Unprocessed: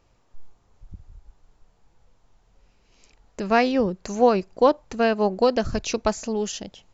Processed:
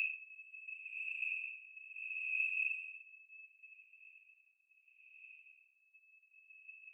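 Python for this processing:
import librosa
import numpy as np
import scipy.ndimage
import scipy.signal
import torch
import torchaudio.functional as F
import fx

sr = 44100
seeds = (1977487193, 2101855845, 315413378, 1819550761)

p1 = fx.bin_expand(x, sr, power=1.5)
p2 = np.maximum(p1, 0.0)
p3 = p2 + 10.0 ** (-8.0 / 20.0) * np.pad(p2, (int(121 * sr / 1000.0), 0))[:len(p2)]
p4 = fx.freq_invert(p3, sr, carrier_hz=2600)
p5 = fx.transient(p4, sr, attack_db=12, sustain_db=-2)
p6 = p5 + fx.echo_feedback(p5, sr, ms=217, feedback_pct=56, wet_db=-16.5, dry=0)
p7 = fx.paulstretch(p6, sr, seeds[0], factor=13.0, window_s=0.1, from_s=0.98)
y = fx.band_widen(p7, sr, depth_pct=100)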